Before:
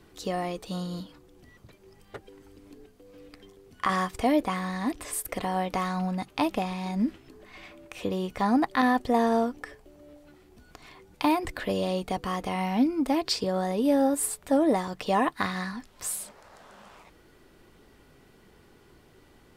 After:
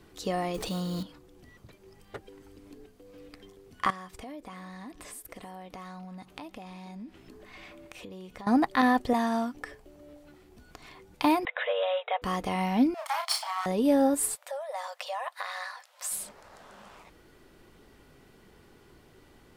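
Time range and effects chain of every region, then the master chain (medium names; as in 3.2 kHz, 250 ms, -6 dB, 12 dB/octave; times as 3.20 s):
0.54–1.03 s: block-companded coder 5-bit + level flattener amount 70%
3.90–8.47 s: compression 4:1, threshold -43 dBFS + delay 292 ms -20.5 dB
9.13–9.55 s: high-pass 130 Hz + peaking EQ 460 Hz -14 dB 0.82 oct
11.45–12.22 s: peaking EQ 2.1 kHz +5 dB 0.24 oct + waveshaping leveller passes 1 + brick-wall FIR band-pass 450–3900 Hz
12.94–13.66 s: comb filter that takes the minimum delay 0.93 ms + steep high-pass 630 Hz 96 dB/octave + doubling 33 ms -4.5 dB
14.35–16.12 s: compression 5:1, threshold -29 dBFS + brick-wall FIR high-pass 490 Hz
whole clip: none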